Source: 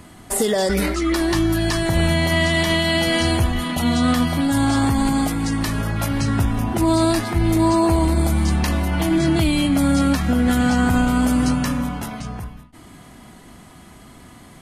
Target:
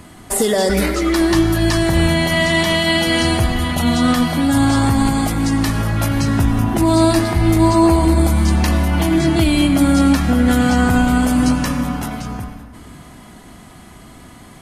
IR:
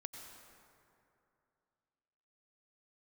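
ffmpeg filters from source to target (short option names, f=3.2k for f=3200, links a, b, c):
-filter_complex "[0:a]asplit=2[a][b];[1:a]atrim=start_sample=2205,asetrate=48510,aresample=44100[c];[b][c]afir=irnorm=-1:irlink=0,volume=5dB[d];[a][d]amix=inputs=2:normalize=0,volume=-2.5dB"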